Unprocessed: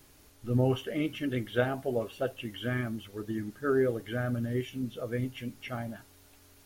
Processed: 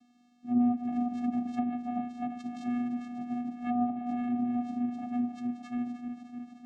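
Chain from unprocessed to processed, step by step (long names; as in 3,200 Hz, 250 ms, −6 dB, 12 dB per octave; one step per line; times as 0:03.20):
feedback delay that plays each chunk backwards 152 ms, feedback 84%, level −11 dB
treble cut that deepens with the level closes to 520 Hz, closed at −22.5 dBFS
channel vocoder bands 4, square 243 Hz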